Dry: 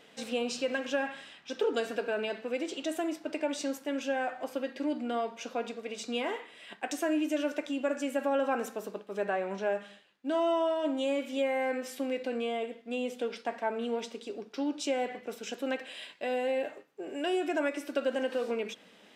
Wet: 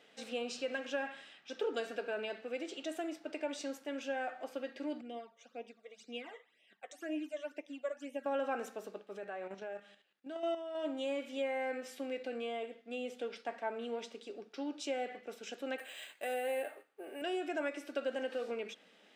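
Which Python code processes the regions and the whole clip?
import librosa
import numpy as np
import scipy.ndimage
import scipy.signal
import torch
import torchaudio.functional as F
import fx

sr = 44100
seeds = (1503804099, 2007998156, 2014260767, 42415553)

y = fx.chain(x, sr, fx.phaser_stages(stages=12, low_hz=250.0, high_hz=1500.0, hz=2.0, feedback_pct=0),
    fx.upward_expand(threshold_db=-50.0, expansion=1.5), at=(5.01, 8.26))
y = fx.chain(y, sr, fx.level_steps(step_db=9),
    fx.quant_float(bits=8), at=(9.17, 10.75))
y = fx.chain(y, sr, fx.highpass(hz=310.0, slope=6),
    fx.peak_eq(hz=1200.0, db=4.0, octaves=2.4),
    fx.resample_bad(factor=4, down='filtered', up='hold'), at=(15.78, 17.22))
y = fx.highpass(y, sr, hz=290.0, slope=6)
y = fx.high_shelf(y, sr, hz=9200.0, db=-8.0)
y = fx.notch(y, sr, hz=1000.0, q=8.5)
y = y * 10.0 ** (-5.0 / 20.0)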